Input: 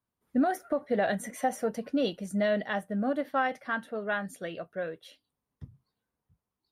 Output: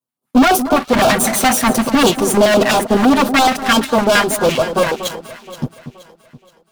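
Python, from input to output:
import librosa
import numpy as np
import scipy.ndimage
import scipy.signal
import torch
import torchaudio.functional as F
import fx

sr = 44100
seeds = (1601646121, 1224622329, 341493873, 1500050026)

p1 = fx.lower_of_two(x, sr, delay_ms=7.9)
p2 = scipy.signal.sosfilt(scipy.signal.butter(4, 140.0, 'highpass', fs=sr, output='sos'), p1)
p3 = fx.high_shelf(p2, sr, hz=8400.0, db=3.0)
p4 = fx.level_steps(p3, sr, step_db=13)
p5 = p3 + F.gain(torch.from_numpy(p4), 1.0).numpy()
p6 = fx.leveller(p5, sr, passes=5)
p7 = fx.filter_lfo_notch(p6, sr, shape='square', hz=5.9, low_hz=450.0, high_hz=1900.0, q=0.8)
p8 = p7 + fx.echo_alternate(p7, sr, ms=237, hz=1400.0, feedback_pct=62, wet_db=-10.5, dry=0)
y = F.gain(torch.from_numpy(p8), 6.5).numpy()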